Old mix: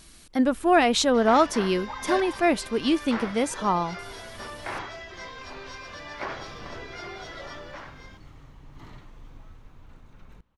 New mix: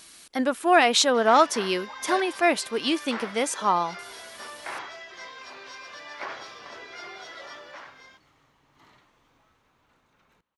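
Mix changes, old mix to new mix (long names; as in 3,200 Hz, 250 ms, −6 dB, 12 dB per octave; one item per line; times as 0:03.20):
speech +4.0 dB
first sound −4.5 dB
master: add high-pass filter 680 Hz 6 dB per octave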